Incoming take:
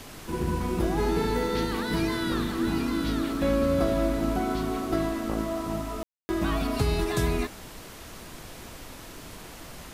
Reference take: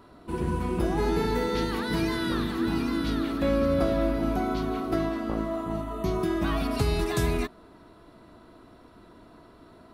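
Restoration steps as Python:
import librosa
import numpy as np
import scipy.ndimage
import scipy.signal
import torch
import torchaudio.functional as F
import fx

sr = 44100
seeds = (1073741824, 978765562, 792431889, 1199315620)

y = fx.fix_ambience(x, sr, seeds[0], print_start_s=7.66, print_end_s=8.16, start_s=6.03, end_s=6.29)
y = fx.noise_reduce(y, sr, print_start_s=7.66, print_end_s=8.16, reduce_db=9.0)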